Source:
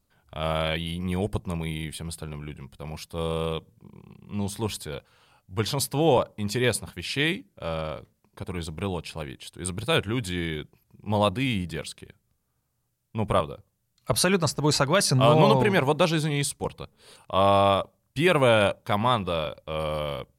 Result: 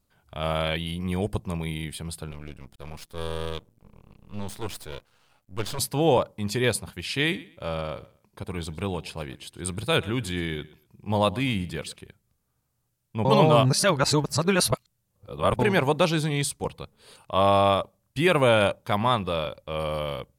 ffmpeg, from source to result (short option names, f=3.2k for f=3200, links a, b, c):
-filter_complex "[0:a]asettb=1/sr,asplit=3[a][b][c];[a]atrim=end=2.314[d];[b]atrim=start=2.31:end=5.79,asetpts=PTS-STARTPTS,afade=t=in:d=0.004:c=qsin,afade=t=out:st=3.476:d=0.004:c=qsin,aeval=exprs='max(val(0),0)':c=same[e];[c]atrim=start=5.786[f];[d][e]acrossfade=d=0.004:c1=hsin:c2=qsin[g];[g][f]acrossfade=d=0.004:c1=qsin:c2=hsin,asettb=1/sr,asplit=3[h][i][j];[h]atrim=end=7.174[k];[i]atrim=start=7.17:end=11.98,asetpts=PTS-STARTPTS,afade=t=in:d=0.004:c=qsin,afade=t=out:st=4.806:d=0.004:c=qsin,aecho=1:1:122|244:0.1|0.023,atrim=end_sample=212121[l];[j]atrim=start=11.976[m];[k][l]acrossfade=d=0.004:c1=hsin:c2=qsin[n];[n][m]acrossfade=d=0.004:c1=qsin:c2=hsin,asplit=3[o][p][q];[o]atrim=end=13.252[r];[p]atrim=start=13.248:end=15.592,asetpts=PTS-STARTPTS,areverse[s];[q]atrim=start=15.588[t];[r][s]acrossfade=d=0.004:c1=hsin:c2=hsin[u];[u][t]acrossfade=d=0.004:c1=hsin:c2=hsin"